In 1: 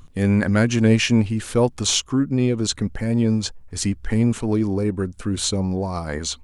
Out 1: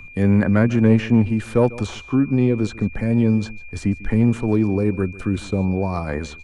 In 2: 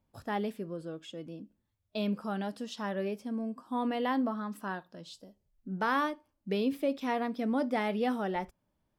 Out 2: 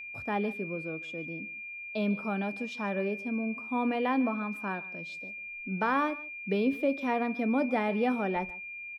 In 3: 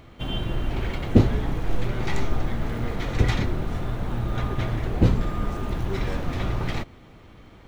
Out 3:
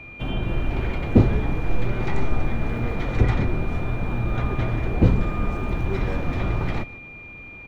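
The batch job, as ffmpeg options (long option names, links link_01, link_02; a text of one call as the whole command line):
ffmpeg -i in.wav -filter_complex "[0:a]highshelf=frequency=3400:gain=-10,acrossover=split=100|550|1900[link_01][link_02][link_03][link_04];[link_04]acompressor=threshold=-43dB:ratio=6[link_05];[link_01][link_02][link_03][link_05]amix=inputs=4:normalize=0,aeval=exprs='val(0)+0.00794*sin(2*PI*2400*n/s)':channel_layout=same,aecho=1:1:148:0.1,asoftclip=type=tanh:threshold=-5dB,volume=2.5dB" out.wav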